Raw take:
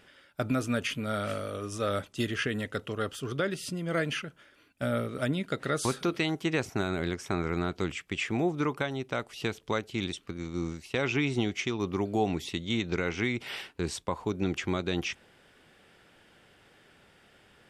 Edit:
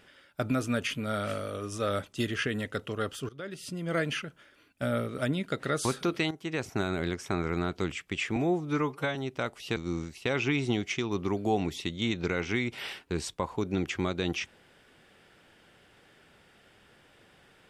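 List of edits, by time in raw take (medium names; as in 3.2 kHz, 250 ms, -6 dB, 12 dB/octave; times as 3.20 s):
3.29–3.89 s: fade in, from -21 dB
6.31–6.77 s: fade in, from -12.5 dB
8.36–8.89 s: stretch 1.5×
9.50–10.45 s: delete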